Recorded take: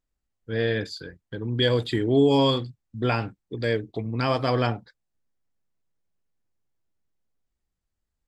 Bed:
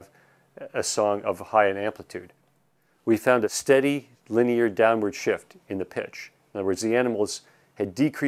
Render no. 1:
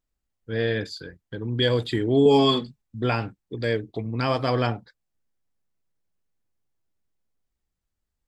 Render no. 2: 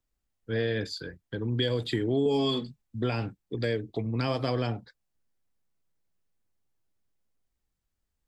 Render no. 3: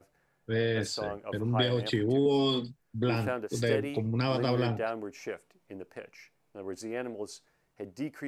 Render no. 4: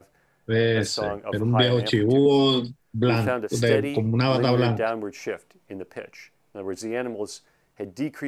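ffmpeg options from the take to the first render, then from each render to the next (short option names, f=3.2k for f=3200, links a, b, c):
-filter_complex "[0:a]asettb=1/sr,asplit=3[a][b][c];[a]atrim=end=2.254[d];[b]atrim=start=2.25:end=2.82,asetpts=PTS-STARTPTS,afade=t=in:d=0.004:c=qsin,afade=t=out:st=0.566:d=0.004:c=qsin,aecho=1:1:4.7:0.9,atrim=end_sample=25137[e];[c]atrim=start=2.816[f];[d][e]acrossfade=d=0.004:c1=hsin:c2=qsin[g];[g][f]acrossfade=d=0.004:c1=qsin:c2=hsin"
-filter_complex "[0:a]acrossover=split=130|670|2200[a][b][c][d];[c]alimiter=level_in=3dB:limit=-24dB:level=0:latency=1:release=307,volume=-3dB[e];[a][b][e][d]amix=inputs=4:normalize=0,acompressor=threshold=-25dB:ratio=3"
-filter_complex "[1:a]volume=-13.5dB[a];[0:a][a]amix=inputs=2:normalize=0"
-af "volume=7.5dB"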